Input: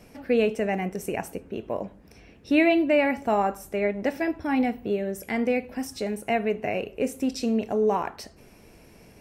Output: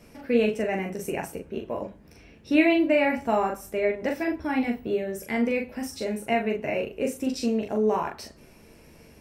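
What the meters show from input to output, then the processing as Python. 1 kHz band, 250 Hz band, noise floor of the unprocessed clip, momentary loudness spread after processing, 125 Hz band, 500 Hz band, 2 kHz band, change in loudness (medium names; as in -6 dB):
-1.5 dB, 0.0 dB, -52 dBFS, 13 LU, -1.5 dB, -0.5 dB, 0.0 dB, -0.5 dB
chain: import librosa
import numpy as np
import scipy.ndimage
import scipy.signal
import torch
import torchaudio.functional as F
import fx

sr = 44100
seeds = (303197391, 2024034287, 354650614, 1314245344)

p1 = fx.notch(x, sr, hz=740.0, q=12.0)
p2 = p1 + fx.room_early_taps(p1, sr, ms=(13, 42), db=(-6.0, -4.0), dry=0)
y = p2 * librosa.db_to_amplitude(-2.0)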